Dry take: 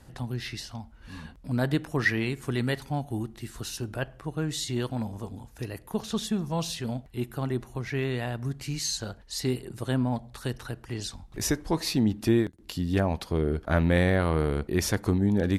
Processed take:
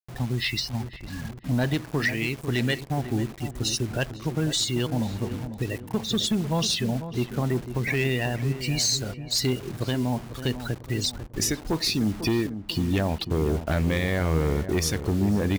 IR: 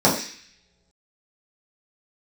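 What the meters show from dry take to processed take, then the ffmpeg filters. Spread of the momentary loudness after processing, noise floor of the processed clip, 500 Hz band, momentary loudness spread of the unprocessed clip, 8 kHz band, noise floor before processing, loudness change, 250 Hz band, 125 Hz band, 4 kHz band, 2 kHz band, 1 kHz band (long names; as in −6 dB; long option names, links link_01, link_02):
6 LU, −42 dBFS, +1.0 dB, 13 LU, +6.0 dB, −52 dBFS, +2.5 dB, +1.5 dB, +2.5 dB, +8.0 dB, +2.5 dB, +1.0 dB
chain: -filter_complex "[0:a]afftdn=noise_reduction=24:noise_floor=-39,highshelf=frequency=1800:width_type=q:width=1.5:gain=6.5,asplit=2[link_01][link_02];[link_02]acompressor=threshold=-31dB:ratio=16,volume=2.5dB[link_03];[link_01][link_03]amix=inputs=2:normalize=0,alimiter=limit=-13dB:level=0:latency=1:release=493,acrusher=bits=6:mix=0:aa=0.000001,asoftclip=type=hard:threshold=-18.5dB,asplit=2[link_04][link_05];[link_05]adelay=497,lowpass=frequency=1100:poles=1,volume=-10dB,asplit=2[link_06][link_07];[link_07]adelay=497,lowpass=frequency=1100:poles=1,volume=0.49,asplit=2[link_08][link_09];[link_09]adelay=497,lowpass=frequency=1100:poles=1,volume=0.49,asplit=2[link_10][link_11];[link_11]adelay=497,lowpass=frequency=1100:poles=1,volume=0.49,asplit=2[link_12][link_13];[link_13]adelay=497,lowpass=frequency=1100:poles=1,volume=0.49[link_14];[link_06][link_08][link_10][link_12][link_14]amix=inputs=5:normalize=0[link_15];[link_04][link_15]amix=inputs=2:normalize=0"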